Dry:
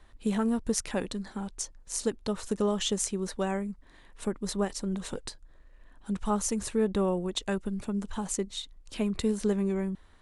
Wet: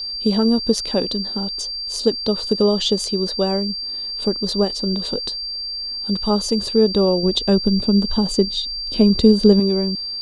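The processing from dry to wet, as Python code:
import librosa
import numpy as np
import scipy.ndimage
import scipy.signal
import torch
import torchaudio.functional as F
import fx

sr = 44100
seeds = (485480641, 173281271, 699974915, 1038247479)

y = fx.low_shelf(x, sr, hz=330.0, db=8.5, at=(7.23, 9.6))
y = y + 10.0 ** (-35.0 / 20.0) * np.sin(2.0 * np.pi * 4700.0 * np.arange(len(y)) / sr)
y = fx.graphic_eq(y, sr, hz=(250, 500, 2000, 4000, 8000), db=(5, 7, -8, 11, -8))
y = y * librosa.db_to_amplitude(5.0)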